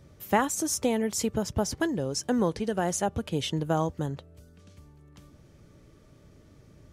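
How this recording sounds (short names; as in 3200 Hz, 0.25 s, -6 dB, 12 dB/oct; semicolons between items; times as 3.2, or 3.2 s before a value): noise floor -56 dBFS; spectral tilt -4.5 dB/oct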